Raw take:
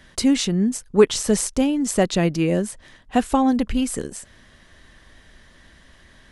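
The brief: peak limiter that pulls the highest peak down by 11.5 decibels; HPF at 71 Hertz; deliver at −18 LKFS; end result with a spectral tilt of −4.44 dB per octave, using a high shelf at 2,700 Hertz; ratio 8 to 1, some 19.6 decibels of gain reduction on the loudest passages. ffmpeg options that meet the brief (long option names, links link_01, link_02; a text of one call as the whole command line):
ffmpeg -i in.wav -af "highpass=71,highshelf=frequency=2700:gain=-7,acompressor=threshold=-29dB:ratio=8,volume=21dB,alimiter=limit=-9dB:level=0:latency=1" out.wav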